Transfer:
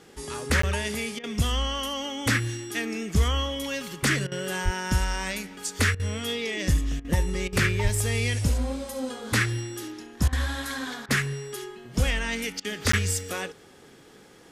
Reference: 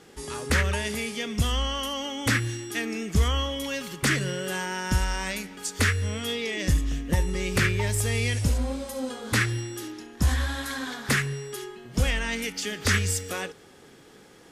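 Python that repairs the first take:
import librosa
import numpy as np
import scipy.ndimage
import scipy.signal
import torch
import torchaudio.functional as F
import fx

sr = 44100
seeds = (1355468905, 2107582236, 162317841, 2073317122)

y = fx.fix_deplosive(x, sr, at_s=(4.64, 7.83))
y = fx.fix_interpolate(y, sr, at_s=(0.62, 12.92), length_ms=14.0)
y = fx.fix_interpolate(y, sr, at_s=(1.19, 4.27, 5.95, 7.0, 7.48, 10.28, 11.06, 12.6), length_ms=45.0)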